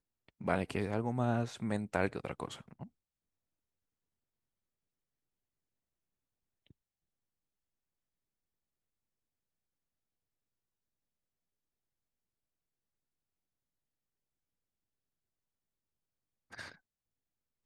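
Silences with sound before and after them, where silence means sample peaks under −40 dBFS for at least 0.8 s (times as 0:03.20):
0:02.83–0:16.54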